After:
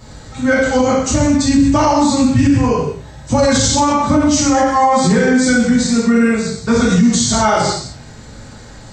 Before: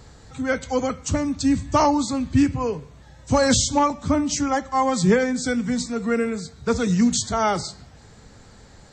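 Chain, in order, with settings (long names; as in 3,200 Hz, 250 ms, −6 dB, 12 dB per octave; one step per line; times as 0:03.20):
reverb whose tail is shaped and stops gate 280 ms falling, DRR −8 dB
brickwall limiter −7.5 dBFS, peak gain reduction 11 dB
level +3 dB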